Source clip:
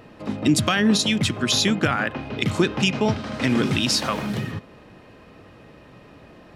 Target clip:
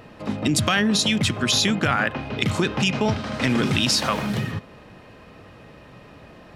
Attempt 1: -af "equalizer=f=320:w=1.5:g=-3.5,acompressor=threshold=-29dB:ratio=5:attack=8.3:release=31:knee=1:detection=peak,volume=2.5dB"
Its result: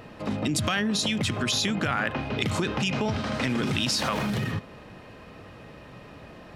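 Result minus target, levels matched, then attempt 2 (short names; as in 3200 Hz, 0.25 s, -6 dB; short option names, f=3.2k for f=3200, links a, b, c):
compressor: peak gain reduction +6 dB
-af "equalizer=f=320:w=1.5:g=-3.5,acompressor=threshold=-21.5dB:ratio=5:attack=8.3:release=31:knee=1:detection=peak,volume=2.5dB"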